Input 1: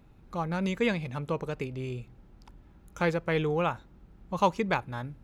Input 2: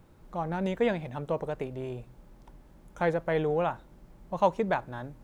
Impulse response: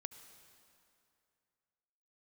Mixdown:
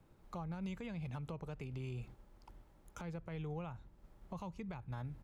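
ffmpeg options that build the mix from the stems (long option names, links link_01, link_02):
-filter_complex "[0:a]agate=range=-33dB:threshold=-45dB:ratio=3:detection=peak,volume=0.5dB[link_01];[1:a]volume=-1,adelay=0.7,volume=-9dB[link_02];[link_01][link_02]amix=inputs=2:normalize=0,acrossover=split=170[link_03][link_04];[link_04]acompressor=threshold=-43dB:ratio=4[link_05];[link_03][link_05]amix=inputs=2:normalize=0,alimiter=level_in=11dB:limit=-24dB:level=0:latency=1:release=185,volume=-11dB"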